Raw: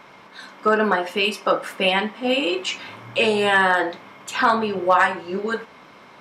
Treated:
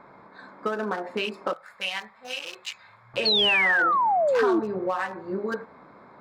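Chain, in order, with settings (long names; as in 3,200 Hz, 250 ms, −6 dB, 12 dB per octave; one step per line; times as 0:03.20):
adaptive Wiener filter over 15 samples
0:01.53–0:03.14: guitar amp tone stack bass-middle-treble 10-0-10
downward compressor 6 to 1, threshold −23 dBFS, peak gain reduction 11 dB
0:03.25–0:04.60: sound drawn into the spectrogram fall 310–4,500 Hz −20 dBFS
level −1.5 dB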